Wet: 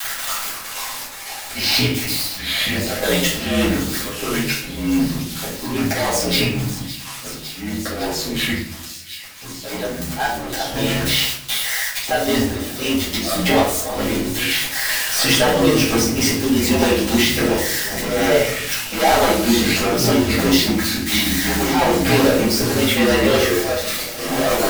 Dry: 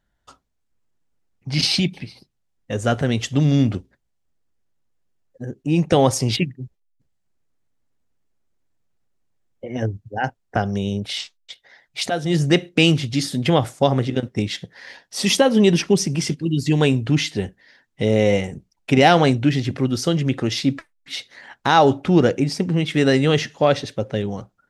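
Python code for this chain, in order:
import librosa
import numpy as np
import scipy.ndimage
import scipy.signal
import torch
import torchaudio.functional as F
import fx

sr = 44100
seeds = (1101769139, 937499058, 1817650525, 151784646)

y = x + 0.5 * 10.0 ** (-18.0 / 20.0) * np.diff(np.sign(x), prepend=np.sign(x[:1]))
y = scipy.signal.sosfilt(scipy.signal.butter(2, 380.0, 'highpass', fs=sr, output='sos'), y)
y = fx.high_shelf(y, sr, hz=3500.0, db=-8.5)
y = fx.transient(y, sr, attack_db=0, sustain_db=-6)
y = fx.leveller(y, sr, passes=5)
y = fx.auto_swell(y, sr, attack_ms=239.0)
y = y * np.sin(2.0 * np.pi * 63.0 * np.arange(len(y)) / sr)
y = fx.echo_wet_highpass(y, sr, ms=557, feedback_pct=83, hz=4100.0, wet_db=-14.5)
y = fx.echo_pitch(y, sr, ms=412, semitones=-4, count=2, db_per_echo=-6.0)
y = fx.room_shoebox(y, sr, seeds[0], volume_m3=67.0, walls='mixed', distance_m=2.2)
y = fx.band_squash(y, sr, depth_pct=40)
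y = F.gain(torch.from_numpy(y), -13.0).numpy()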